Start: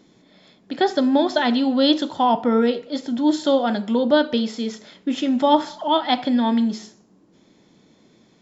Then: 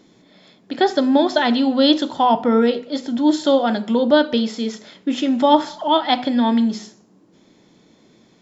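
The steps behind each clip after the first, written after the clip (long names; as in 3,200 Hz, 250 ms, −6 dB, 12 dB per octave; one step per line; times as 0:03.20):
mains-hum notches 50/100/150/200/250 Hz
level +2.5 dB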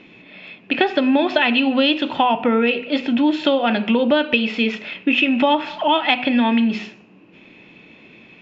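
low-pass with resonance 2,600 Hz, resonance Q 15
downward compressor 6 to 1, threshold −18 dBFS, peak gain reduction 11 dB
level +4.5 dB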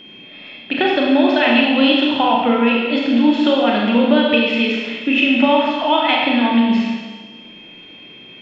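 four-comb reverb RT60 1.4 s, combs from 30 ms, DRR −2 dB
steady tone 3,200 Hz −38 dBFS
level −1.5 dB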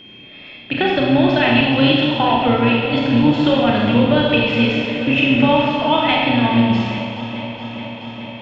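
sub-octave generator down 1 octave, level −6 dB
on a send: delay that swaps between a low-pass and a high-pass 212 ms, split 930 Hz, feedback 87%, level −11.5 dB
on the sum: level −1 dB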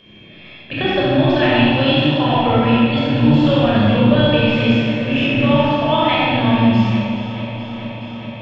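rectangular room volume 2,500 cubic metres, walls furnished, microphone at 5.7 metres
level −5.5 dB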